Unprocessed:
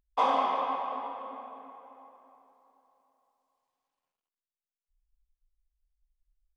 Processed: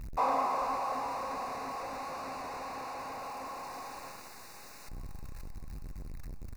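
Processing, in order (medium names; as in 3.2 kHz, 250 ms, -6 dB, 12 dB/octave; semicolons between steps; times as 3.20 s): jump at every zero crossing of -29 dBFS; dynamic bell 4.7 kHz, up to +4 dB, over -47 dBFS, Q 0.72; Butterworth band-stop 3.2 kHz, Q 2.8; treble shelf 3.6 kHz -10.5 dB; feedback delay 608 ms, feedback 57%, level -16 dB; trim -5 dB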